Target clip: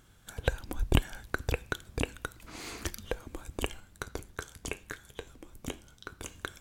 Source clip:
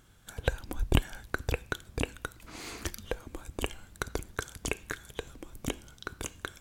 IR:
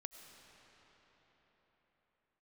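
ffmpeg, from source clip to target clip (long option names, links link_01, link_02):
-filter_complex "[0:a]asplit=3[link_01][link_02][link_03];[link_01]afade=type=out:start_time=3.79:duration=0.02[link_04];[link_02]flanger=delay=9.8:depth=2.8:regen=-71:speed=1:shape=sinusoidal,afade=type=in:start_time=3.79:duration=0.02,afade=type=out:start_time=6.26:duration=0.02[link_05];[link_03]afade=type=in:start_time=6.26:duration=0.02[link_06];[link_04][link_05][link_06]amix=inputs=3:normalize=0"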